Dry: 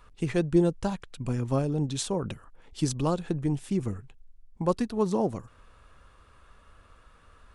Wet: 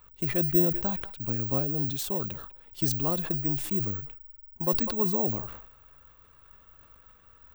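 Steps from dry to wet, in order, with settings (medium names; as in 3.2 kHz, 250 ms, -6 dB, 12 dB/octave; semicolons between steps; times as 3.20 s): band-passed feedback delay 197 ms, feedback 55%, band-pass 1.8 kHz, level -20.5 dB; careless resampling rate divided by 2×, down filtered, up zero stuff; decay stretcher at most 62 dB/s; trim -4.5 dB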